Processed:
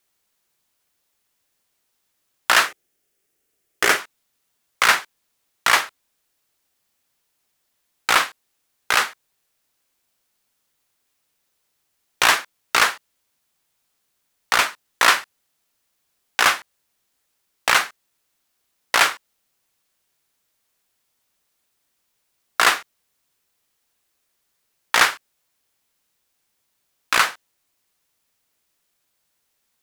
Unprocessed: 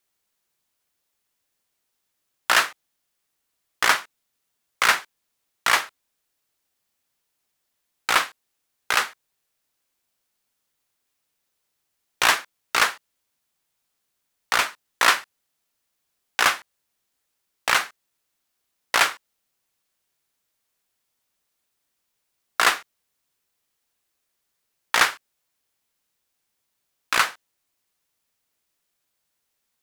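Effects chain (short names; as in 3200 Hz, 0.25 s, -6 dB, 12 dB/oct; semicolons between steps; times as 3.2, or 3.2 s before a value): 2.68–4 fifteen-band EQ 400 Hz +10 dB, 1000 Hz -8 dB, 4000 Hz -5 dB; in parallel at +2 dB: limiter -9 dBFS, peak gain reduction 6 dB; on the sum: gain -2.5 dB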